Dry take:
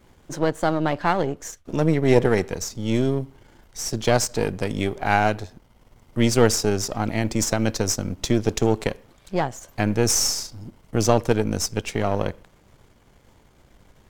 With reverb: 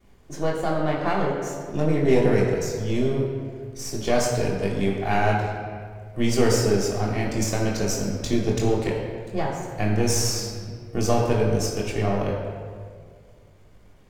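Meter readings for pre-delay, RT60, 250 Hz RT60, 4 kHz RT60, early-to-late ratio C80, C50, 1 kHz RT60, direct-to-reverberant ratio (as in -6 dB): 3 ms, 2.0 s, 2.0 s, 1.2 s, 3.5 dB, 2.0 dB, 1.7 s, -12.0 dB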